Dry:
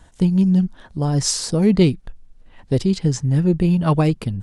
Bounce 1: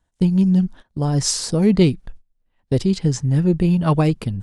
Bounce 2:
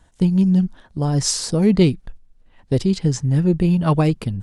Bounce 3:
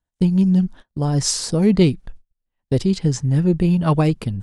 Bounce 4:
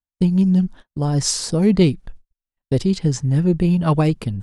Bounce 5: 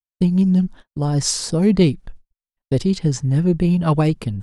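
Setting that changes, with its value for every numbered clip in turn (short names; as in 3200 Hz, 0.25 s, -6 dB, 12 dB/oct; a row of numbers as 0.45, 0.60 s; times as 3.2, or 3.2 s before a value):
gate, range: -22, -6, -34, -48, -60 dB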